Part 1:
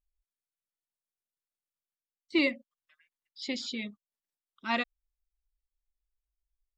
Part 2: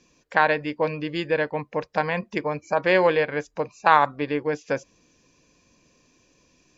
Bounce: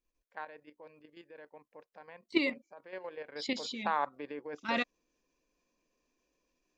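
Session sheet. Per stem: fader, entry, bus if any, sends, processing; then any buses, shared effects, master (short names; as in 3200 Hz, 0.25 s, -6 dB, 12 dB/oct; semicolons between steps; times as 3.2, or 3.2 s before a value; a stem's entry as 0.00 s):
+2.5 dB, 0.00 s, no send, dry
3.14 s -21 dB -> 3.45 s -8.5 dB, 0.00 s, no send, HPF 290 Hz 12 dB/oct; high shelf 2300 Hz -7 dB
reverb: off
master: level quantiser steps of 10 dB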